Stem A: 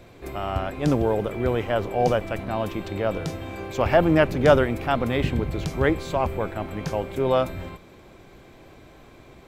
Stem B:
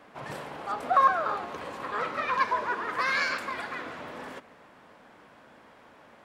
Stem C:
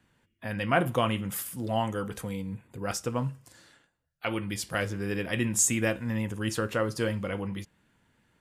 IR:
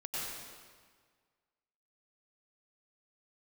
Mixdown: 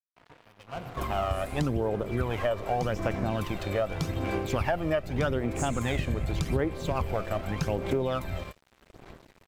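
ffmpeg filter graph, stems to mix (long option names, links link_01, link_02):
-filter_complex "[0:a]aphaser=in_gain=1:out_gain=1:delay=1.7:decay=0.55:speed=0.84:type=sinusoidal,adelay=750,volume=0.5dB[link_01];[1:a]lowpass=1700,asplit=2[link_02][link_03];[link_03]adelay=3.6,afreqshift=-0.55[link_04];[link_02][link_04]amix=inputs=2:normalize=1,volume=-2.5dB[link_05];[2:a]asplit=2[link_06][link_07];[link_07]afreqshift=0.47[link_08];[link_06][link_08]amix=inputs=2:normalize=1,volume=-12dB,asplit=3[link_09][link_10][link_11];[link_10]volume=-4.5dB[link_12];[link_11]apad=whole_len=275474[link_13];[link_05][link_13]sidechaincompress=threshold=-50dB:ratio=8:attack=24:release=826[link_14];[3:a]atrim=start_sample=2205[link_15];[link_12][link_15]afir=irnorm=-1:irlink=0[link_16];[link_01][link_14][link_09][link_16]amix=inputs=4:normalize=0,aeval=exprs='sgn(val(0))*max(abs(val(0))-0.00794,0)':channel_layout=same,acompressor=threshold=-24dB:ratio=10"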